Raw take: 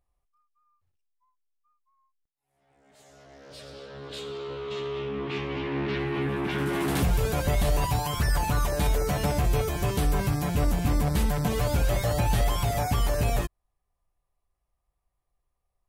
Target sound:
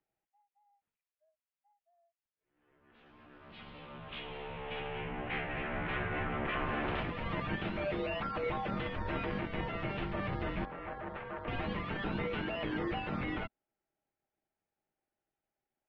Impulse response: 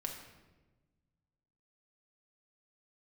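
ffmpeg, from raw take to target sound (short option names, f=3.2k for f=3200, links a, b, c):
-filter_complex "[0:a]acrossover=split=590[a][b];[a]aeval=exprs='abs(val(0))':c=same[c];[c][b]amix=inputs=2:normalize=0,lowshelf=f=330:g=-8,alimiter=limit=-23.5dB:level=0:latency=1:release=17,highpass=f=180:t=q:w=0.5412,highpass=f=180:t=q:w=1.307,lowpass=f=3.4k:t=q:w=0.5176,lowpass=f=3.4k:t=q:w=0.7071,lowpass=f=3.4k:t=q:w=1.932,afreqshift=-390,asettb=1/sr,asplit=3[d][e][f];[d]atrim=end=10.654[g];[e]atrim=start=10.65:end=11.48,asetpts=PTS-STARTPTS,afade=t=in:d=0.004:c=qsin,afade=t=out:st=0.826:d=0.004:c=qsin,acrossover=split=400 2100:gain=0.224 1 0.141[h][i][j];[h][i][j]amix=inputs=3:normalize=0[k];[f]atrim=start=11.476[l];[g][k]acrossfade=d=0.004:c1=hsin:c2=qsin[m];[m][l]acrossfade=d=0.004:c1=qsin:c2=hsin"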